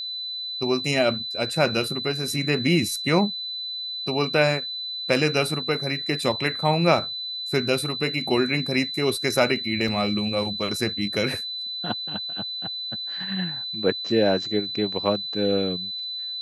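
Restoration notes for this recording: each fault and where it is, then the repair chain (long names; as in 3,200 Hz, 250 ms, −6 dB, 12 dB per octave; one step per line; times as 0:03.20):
whistle 4,000 Hz −29 dBFS
0:09.88: drop-out 3.2 ms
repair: notch filter 4,000 Hz, Q 30
repair the gap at 0:09.88, 3.2 ms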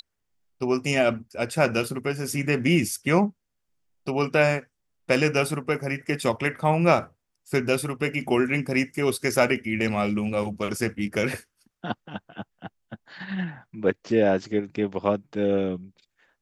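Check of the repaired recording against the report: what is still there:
none of them is left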